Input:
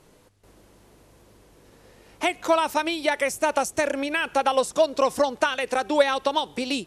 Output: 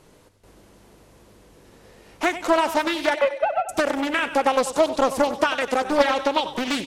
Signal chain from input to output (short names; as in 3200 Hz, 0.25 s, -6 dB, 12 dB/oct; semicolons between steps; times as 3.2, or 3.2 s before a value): 3.14–3.69 sine-wave speech; in parallel at -9 dB: soft clip -23 dBFS, distortion -8 dB; on the sum: feedback echo 95 ms, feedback 53%, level -12.5 dB; Doppler distortion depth 0.48 ms